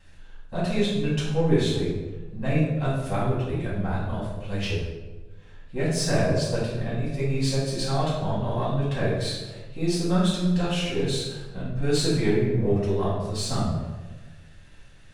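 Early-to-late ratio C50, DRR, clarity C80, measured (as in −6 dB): 1.0 dB, −8.5 dB, 4.0 dB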